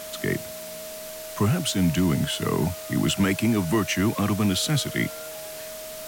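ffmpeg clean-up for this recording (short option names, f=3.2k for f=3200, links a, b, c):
-af "bandreject=f=630:w=30,afwtdn=0.011"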